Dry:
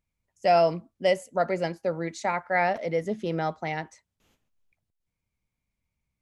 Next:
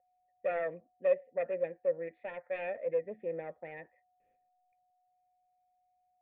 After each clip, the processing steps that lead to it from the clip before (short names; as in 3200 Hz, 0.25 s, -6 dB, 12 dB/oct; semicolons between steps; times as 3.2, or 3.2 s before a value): self-modulated delay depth 0.33 ms; whine 730 Hz -56 dBFS; vocal tract filter e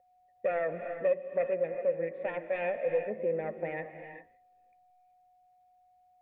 tone controls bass +3 dB, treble -6 dB; compressor 2:1, threshold -39 dBFS, peak gain reduction 9.5 dB; non-linear reverb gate 0.42 s rising, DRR 7 dB; gain +8 dB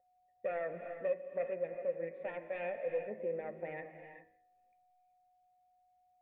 de-hum 80.12 Hz, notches 32; gain -6.5 dB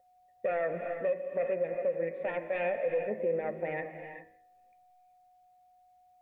limiter -31 dBFS, peak gain reduction 6.5 dB; gain +8.5 dB